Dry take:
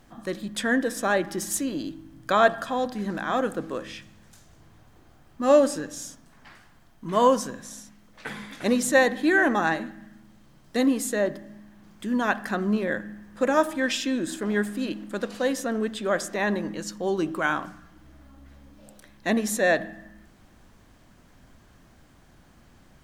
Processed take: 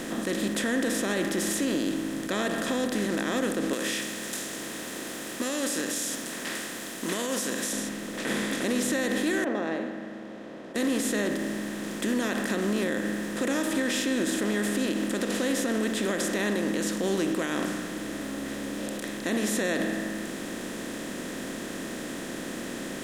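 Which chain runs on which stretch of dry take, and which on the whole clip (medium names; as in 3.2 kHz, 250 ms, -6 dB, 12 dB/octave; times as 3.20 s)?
3.73–7.73 s: tilt EQ +4.5 dB/octave + compression 4:1, threshold -32 dBFS
9.44–10.76 s: band-pass filter 640 Hz, Q 3.1 + distance through air 270 m
whole clip: spectral levelling over time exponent 0.4; high-order bell 980 Hz -9 dB; peak limiter -13.5 dBFS; trim -4.5 dB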